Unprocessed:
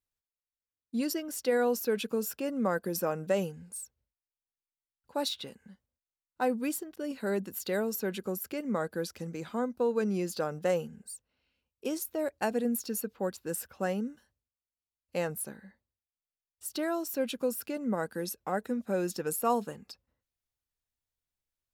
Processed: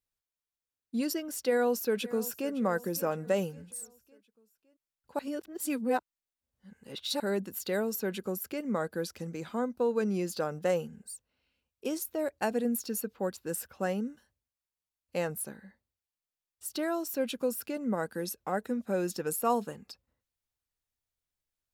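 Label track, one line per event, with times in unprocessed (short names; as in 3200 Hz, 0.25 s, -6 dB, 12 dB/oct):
1.430000	2.520000	echo throw 0.56 s, feedback 50%, level -17.5 dB
5.190000	7.200000	reverse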